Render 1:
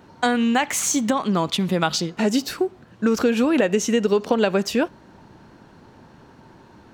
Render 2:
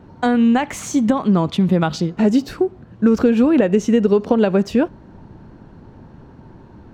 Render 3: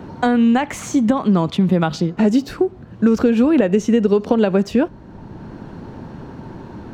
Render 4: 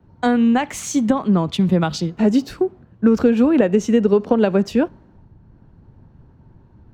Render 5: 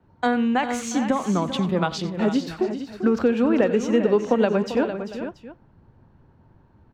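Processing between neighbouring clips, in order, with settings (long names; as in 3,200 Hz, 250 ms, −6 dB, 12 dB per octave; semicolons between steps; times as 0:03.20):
spectral tilt −3 dB per octave
multiband upward and downward compressor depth 40%
multiband upward and downward expander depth 100%; level −1 dB
low-pass filter 3,900 Hz 6 dB per octave; low-shelf EQ 390 Hz −9 dB; on a send: multi-tap delay 92/393/455/682 ms −16.5/−11.5/−10.5/−19 dB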